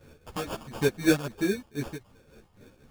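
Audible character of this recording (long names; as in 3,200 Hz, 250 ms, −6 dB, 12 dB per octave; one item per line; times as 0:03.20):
phaser sweep stages 4, 2.3 Hz, lowest notch 390–3,100 Hz
aliases and images of a low sample rate 2,000 Hz, jitter 0%
tremolo triangle 3.9 Hz, depth 75%
a shimmering, thickened sound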